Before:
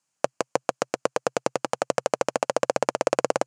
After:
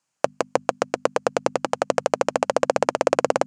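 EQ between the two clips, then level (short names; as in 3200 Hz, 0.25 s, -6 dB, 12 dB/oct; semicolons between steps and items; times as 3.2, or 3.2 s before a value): high shelf 6300 Hz -6.5 dB; notches 50/100/150/200/250 Hz; +3.5 dB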